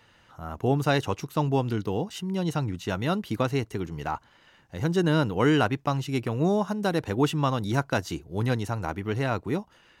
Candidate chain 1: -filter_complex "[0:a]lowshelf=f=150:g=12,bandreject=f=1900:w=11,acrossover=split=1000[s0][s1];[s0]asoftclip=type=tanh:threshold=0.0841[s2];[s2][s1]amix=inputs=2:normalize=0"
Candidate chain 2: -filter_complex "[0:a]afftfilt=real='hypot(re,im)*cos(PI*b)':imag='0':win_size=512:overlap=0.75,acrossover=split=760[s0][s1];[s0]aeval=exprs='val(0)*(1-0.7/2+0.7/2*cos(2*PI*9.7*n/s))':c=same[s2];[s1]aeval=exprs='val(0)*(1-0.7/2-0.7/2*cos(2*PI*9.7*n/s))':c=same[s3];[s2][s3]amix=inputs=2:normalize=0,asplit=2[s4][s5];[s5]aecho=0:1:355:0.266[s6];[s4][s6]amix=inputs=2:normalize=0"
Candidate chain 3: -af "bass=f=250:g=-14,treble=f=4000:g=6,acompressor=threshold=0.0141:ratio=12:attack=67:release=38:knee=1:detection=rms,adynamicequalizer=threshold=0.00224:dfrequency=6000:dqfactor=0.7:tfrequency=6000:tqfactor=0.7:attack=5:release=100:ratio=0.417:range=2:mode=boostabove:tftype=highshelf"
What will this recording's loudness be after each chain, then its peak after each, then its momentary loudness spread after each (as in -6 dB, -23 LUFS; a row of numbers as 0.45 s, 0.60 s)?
-27.5 LUFS, -35.0 LUFS, -36.5 LUFS; -11.5 dBFS, -17.5 dBFS, -16.0 dBFS; 6 LU, 10 LU, 6 LU